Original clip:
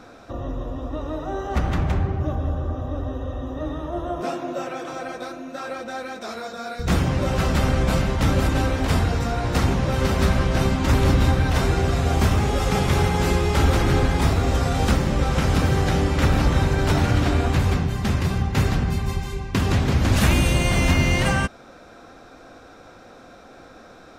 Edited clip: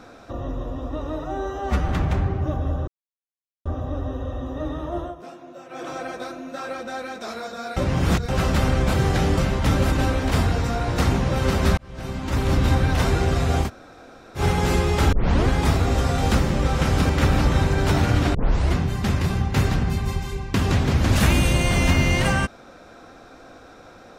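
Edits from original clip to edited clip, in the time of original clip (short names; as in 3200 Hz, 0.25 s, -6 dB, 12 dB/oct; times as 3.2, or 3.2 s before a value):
1.24–1.67 stretch 1.5×
2.66 insert silence 0.78 s
4.01–4.84 dip -13 dB, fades 0.15 s
6.77–7.29 reverse
10.34–11.34 fade in
12.22–12.96 room tone, crossfade 0.10 s
13.69 tape start 0.35 s
15.66–16.1 move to 7.94
17.35 tape start 0.41 s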